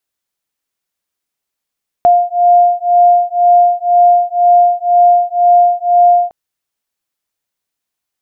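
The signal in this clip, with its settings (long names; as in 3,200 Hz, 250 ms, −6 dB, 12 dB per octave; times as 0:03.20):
two tones that beat 703 Hz, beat 2 Hz, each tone −9.5 dBFS 4.26 s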